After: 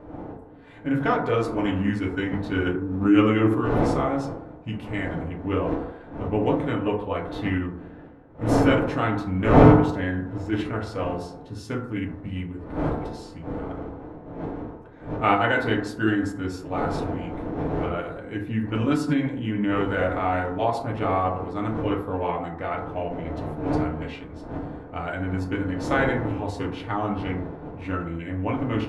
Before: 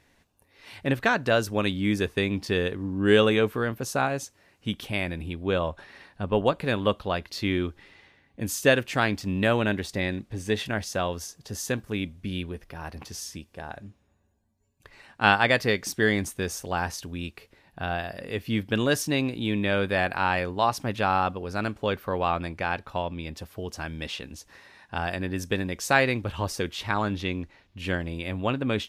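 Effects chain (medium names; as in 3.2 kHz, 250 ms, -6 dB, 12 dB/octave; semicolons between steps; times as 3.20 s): wind noise 610 Hz -31 dBFS; treble shelf 4.7 kHz -8.5 dB; band-stop 5.7 kHz, Q 14; FDN reverb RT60 0.86 s, low-frequency decay 0.85×, high-frequency decay 0.3×, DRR -1.5 dB; formant shift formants -3 st; tape noise reduction on one side only decoder only; trim -3.5 dB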